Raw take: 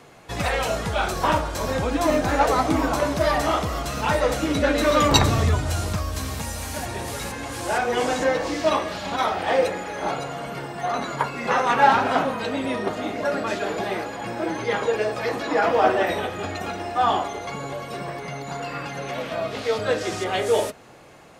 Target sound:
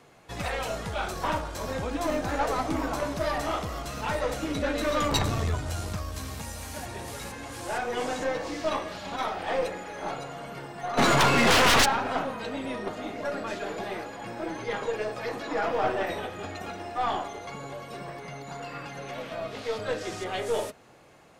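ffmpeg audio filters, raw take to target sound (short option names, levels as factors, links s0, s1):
-filter_complex "[0:a]asplit=3[s0][s1][s2];[s0]afade=t=out:st=10.97:d=0.02[s3];[s1]aeval=exprs='0.562*sin(PI/2*7.08*val(0)/0.562)':c=same,afade=t=in:st=10.97:d=0.02,afade=t=out:st=11.84:d=0.02[s4];[s2]afade=t=in:st=11.84:d=0.02[s5];[s3][s4][s5]amix=inputs=3:normalize=0,aeval=exprs='(tanh(3.98*val(0)+0.45)-tanh(0.45))/3.98':c=same,volume=0.531"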